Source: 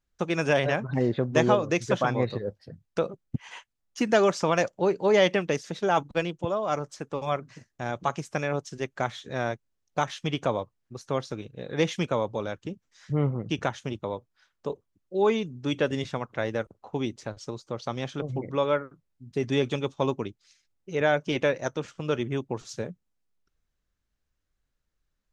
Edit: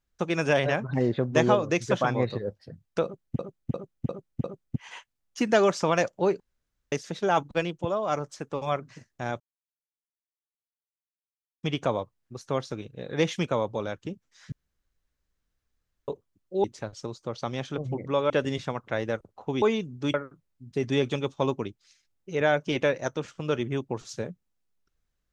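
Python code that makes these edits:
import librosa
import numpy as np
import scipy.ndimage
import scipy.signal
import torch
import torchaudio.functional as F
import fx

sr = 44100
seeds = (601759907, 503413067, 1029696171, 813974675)

y = fx.edit(x, sr, fx.repeat(start_s=3.04, length_s=0.35, count=5),
    fx.room_tone_fill(start_s=5.0, length_s=0.52),
    fx.silence(start_s=8.0, length_s=2.23),
    fx.room_tone_fill(start_s=13.12, length_s=1.56),
    fx.swap(start_s=15.24, length_s=0.52, other_s=17.08, other_length_s=1.66), tone=tone)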